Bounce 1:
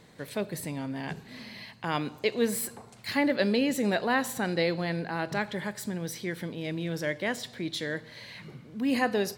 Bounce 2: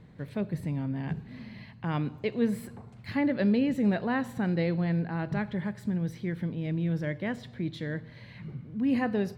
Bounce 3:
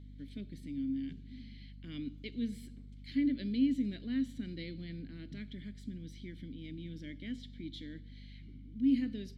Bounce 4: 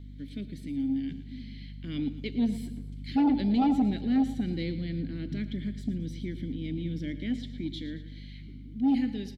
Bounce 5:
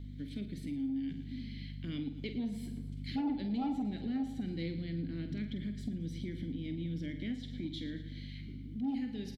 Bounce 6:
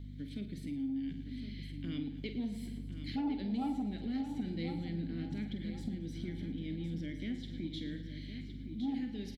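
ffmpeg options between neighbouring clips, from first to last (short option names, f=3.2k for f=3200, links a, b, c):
-af "bass=f=250:g=14,treble=f=4k:g=-14,volume=-5dB"
-filter_complex "[0:a]aexciter=amount=7.8:drive=4.7:freq=3.5k,asplit=3[a][b][c];[a]bandpass=f=270:t=q:w=8,volume=0dB[d];[b]bandpass=f=2.29k:t=q:w=8,volume=-6dB[e];[c]bandpass=f=3.01k:t=q:w=8,volume=-9dB[f];[d][e][f]amix=inputs=3:normalize=0,aeval=exprs='val(0)+0.00355*(sin(2*PI*50*n/s)+sin(2*PI*2*50*n/s)/2+sin(2*PI*3*50*n/s)/3+sin(2*PI*4*50*n/s)/4+sin(2*PI*5*50*n/s)/5)':c=same"
-filter_complex "[0:a]acrossover=split=750[a][b];[a]dynaudnorm=f=220:g=17:m=5dB[c];[c][b]amix=inputs=2:normalize=0,aeval=exprs='0.168*sin(PI/2*2.24*val(0)/0.168)':c=same,aecho=1:1:113|226|339|452:0.2|0.0918|0.0422|0.0194,volume=-4.5dB"
-filter_complex "[0:a]acompressor=threshold=-37dB:ratio=3,asplit=2[a][b];[b]adelay=48,volume=-9.5dB[c];[a][c]amix=inputs=2:normalize=0"
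-af "aecho=1:1:1063|2126|3189:0.335|0.1|0.0301,volume=-1dB"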